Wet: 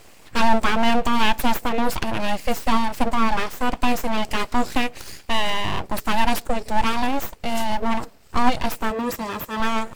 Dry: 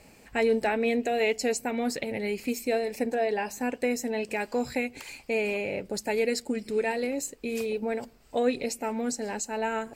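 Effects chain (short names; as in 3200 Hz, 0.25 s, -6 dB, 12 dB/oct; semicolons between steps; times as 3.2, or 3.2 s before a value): dynamic EQ 340 Hz, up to +4 dB, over -36 dBFS, Q 0.87; full-wave rectifier; 8.9–9.6 notch comb 730 Hz; gain +8 dB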